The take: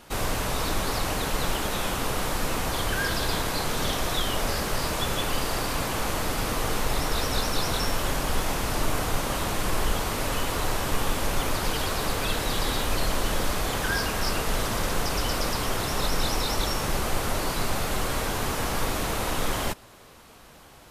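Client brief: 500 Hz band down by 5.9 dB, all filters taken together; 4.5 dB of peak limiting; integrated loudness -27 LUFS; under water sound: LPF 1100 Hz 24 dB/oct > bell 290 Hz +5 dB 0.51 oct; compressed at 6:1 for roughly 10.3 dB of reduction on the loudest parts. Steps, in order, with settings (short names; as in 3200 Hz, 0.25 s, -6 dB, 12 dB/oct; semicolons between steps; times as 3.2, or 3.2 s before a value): bell 500 Hz -8.5 dB; compressor 6:1, threshold -31 dBFS; limiter -26 dBFS; LPF 1100 Hz 24 dB/oct; bell 290 Hz +5 dB 0.51 oct; gain +14 dB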